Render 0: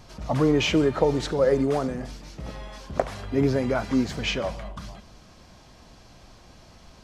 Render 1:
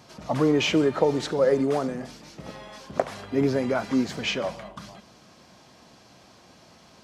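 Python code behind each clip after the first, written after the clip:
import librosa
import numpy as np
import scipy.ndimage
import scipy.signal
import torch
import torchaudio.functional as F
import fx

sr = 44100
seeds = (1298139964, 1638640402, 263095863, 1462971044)

y = scipy.signal.sosfilt(scipy.signal.butter(2, 150.0, 'highpass', fs=sr, output='sos'), x)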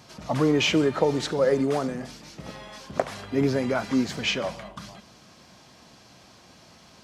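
y = fx.peak_eq(x, sr, hz=500.0, db=-3.5, octaves=2.8)
y = F.gain(torch.from_numpy(y), 2.5).numpy()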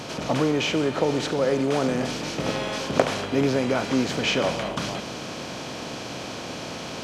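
y = fx.bin_compress(x, sr, power=0.6)
y = fx.rider(y, sr, range_db=4, speed_s=0.5)
y = F.gain(torch.from_numpy(y), -1.0).numpy()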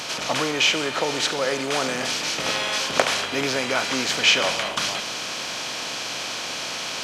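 y = fx.tilt_shelf(x, sr, db=-9.5, hz=690.0)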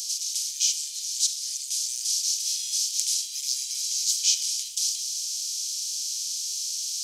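y = scipy.signal.sosfilt(scipy.signal.cheby2(4, 80, [130.0, 1100.0], 'bandstop', fs=sr, output='sos'), x)
y = F.gain(torch.from_numpy(y), 7.5).numpy()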